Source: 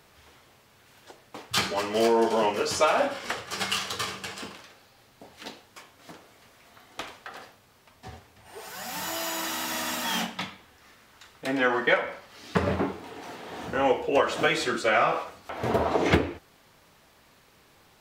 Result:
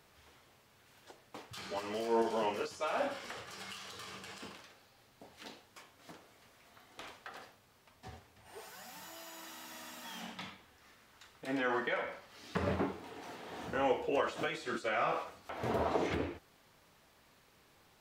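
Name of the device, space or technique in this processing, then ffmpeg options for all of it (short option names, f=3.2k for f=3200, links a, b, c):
de-esser from a sidechain: -filter_complex "[0:a]asplit=2[a][b];[b]highpass=6.8k,apad=whole_len=793978[c];[a][c]sidechaincompress=threshold=-49dB:ratio=4:attack=3.8:release=73,volume=-7dB"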